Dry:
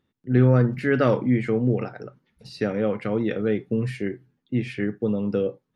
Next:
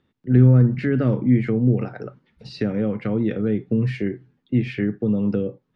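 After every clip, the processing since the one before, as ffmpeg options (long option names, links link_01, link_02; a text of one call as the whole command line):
ffmpeg -i in.wav -filter_complex "[0:a]lowpass=4500,acrossover=split=310[link_01][link_02];[link_02]acompressor=threshold=-35dB:ratio=6[link_03];[link_01][link_03]amix=inputs=2:normalize=0,volume=5.5dB" out.wav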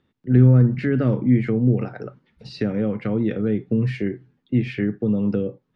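ffmpeg -i in.wav -af anull out.wav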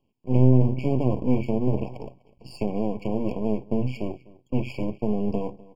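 ffmpeg -i in.wav -filter_complex "[0:a]asplit=2[link_01][link_02];[link_02]adelay=250.7,volume=-21dB,highshelf=frequency=4000:gain=-5.64[link_03];[link_01][link_03]amix=inputs=2:normalize=0,aeval=exprs='max(val(0),0)':channel_layout=same,afftfilt=real='re*eq(mod(floor(b*sr/1024/1100),2),0)':imag='im*eq(mod(floor(b*sr/1024/1100),2),0)':win_size=1024:overlap=0.75" out.wav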